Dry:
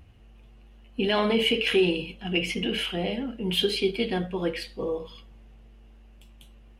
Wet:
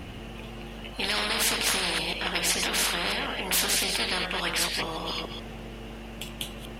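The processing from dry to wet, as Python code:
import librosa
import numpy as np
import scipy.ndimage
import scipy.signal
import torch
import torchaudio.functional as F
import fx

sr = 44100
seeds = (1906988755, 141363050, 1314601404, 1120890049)

y = fx.reverse_delay(x, sr, ms=142, wet_db=-12.5)
y = fx.spectral_comp(y, sr, ratio=10.0)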